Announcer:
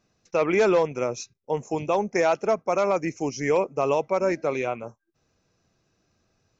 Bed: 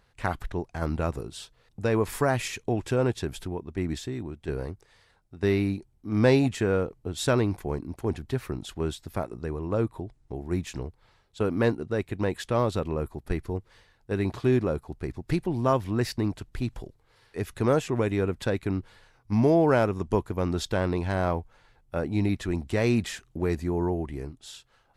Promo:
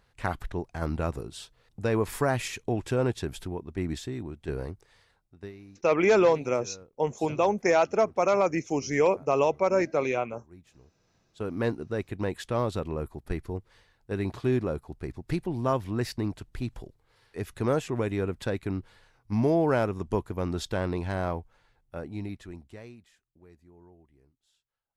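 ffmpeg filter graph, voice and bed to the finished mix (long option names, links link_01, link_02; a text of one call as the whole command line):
ffmpeg -i stem1.wav -i stem2.wav -filter_complex "[0:a]adelay=5500,volume=-0.5dB[link_01];[1:a]volume=18.5dB,afade=type=out:start_time=4.99:duration=0.53:silence=0.0841395,afade=type=in:start_time=10.96:duration=0.82:silence=0.1,afade=type=out:start_time=21.07:duration=1.9:silence=0.0562341[link_02];[link_01][link_02]amix=inputs=2:normalize=0" out.wav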